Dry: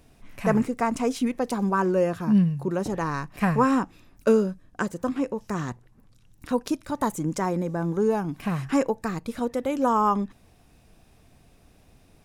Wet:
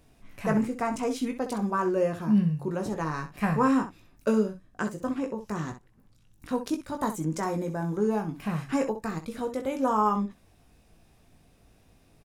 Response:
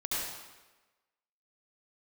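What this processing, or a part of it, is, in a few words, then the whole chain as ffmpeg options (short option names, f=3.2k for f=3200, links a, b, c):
slapback doubling: -filter_complex "[0:a]asettb=1/sr,asplit=3[a][b][c];[a]atrim=end=7.394[d];[b]atrim=start=7.39:end=7.96,asetpts=PTS-STARTPTS,afade=t=in:d=0.004:c=qsin,afade=t=out:st=0.566:d=0.004:c=qsin,highshelf=f=4.5k:g=5.5[e];[c]atrim=start=7.956[f];[d][e]acrossfade=d=0.004:c1=hsin:c2=qsin[g];[g][f]acrossfade=d=0.004:c1=qsin:c2=hsin,asplit=3[h][i][j];[i]adelay=19,volume=-6dB[k];[j]adelay=64,volume=-10.5dB[l];[h][k][l]amix=inputs=3:normalize=0,volume=-4.5dB"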